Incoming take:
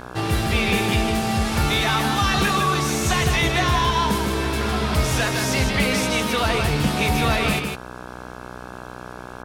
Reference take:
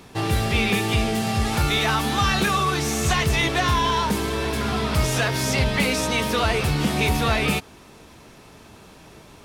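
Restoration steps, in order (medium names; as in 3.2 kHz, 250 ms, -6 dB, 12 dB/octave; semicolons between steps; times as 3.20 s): de-hum 61.8 Hz, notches 27; inverse comb 158 ms -5.5 dB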